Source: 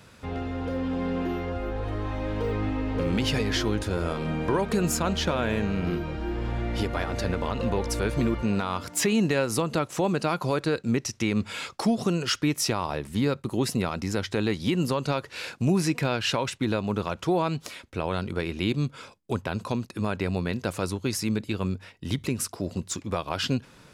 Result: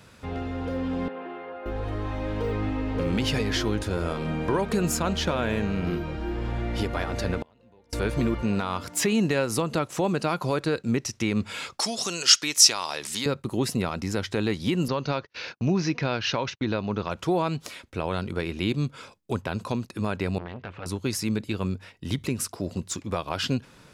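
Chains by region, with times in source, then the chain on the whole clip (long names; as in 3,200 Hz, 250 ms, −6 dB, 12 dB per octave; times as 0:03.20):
0:01.08–0:01.66: high-pass filter 530 Hz + high-frequency loss of the air 420 metres
0:07.38–0:07.93: high-pass filter 87 Hz + parametric band 1,200 Hz −7.5 dB 0.24 octaves + gate with flip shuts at −24 dBFS, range −30 dB
0:11.80–0:13.26: high-pass filter 920 Hz 6 dB per octave + parametric band 6,100 Hz +14 dB 1.8 octaves + upward compression, threshold −24 dBFS
0:14.88–0:17.11: Chebyshev low-pass filter 6,300 Hz, order 6 + noise gate −41 dBFS, range −30 dB
0:20.38–0:20.86: low-pass filter 3,000 Hz 24 dB per octave + parametric band 340 Hz −5 dB 2.8 octaves + saturating transformer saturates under 1,100 Hz
whole clip: no processing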